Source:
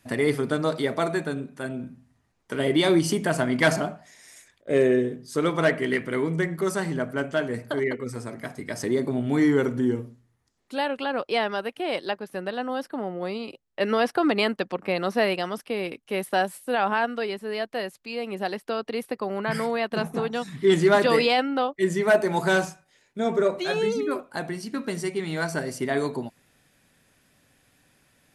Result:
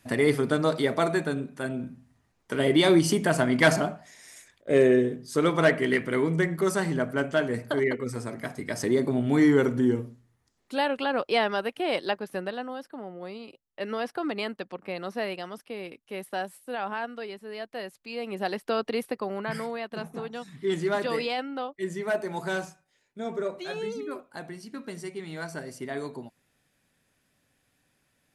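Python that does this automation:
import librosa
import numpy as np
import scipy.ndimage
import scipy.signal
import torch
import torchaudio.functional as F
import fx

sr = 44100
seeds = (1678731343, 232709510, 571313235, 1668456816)

y = fx.gain(x, sr, db=fx.line((12.35, 0.5), (12.79, -8.5), (17.52, -8.5), (18.82, 2.0), (19.84, -8.5)))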